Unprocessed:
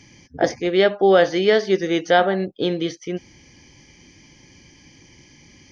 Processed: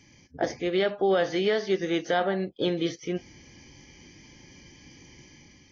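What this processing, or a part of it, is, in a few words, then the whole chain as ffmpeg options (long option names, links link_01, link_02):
low-bitrate web radio: -af "dynaudnorm=framelen=100:gausssize=9:maxgain=5dB,alimiter=limit=-7dB:level=0:latency=1:release=83,volume=-8dB" -ar 24000 -c:a aac -b:a 24k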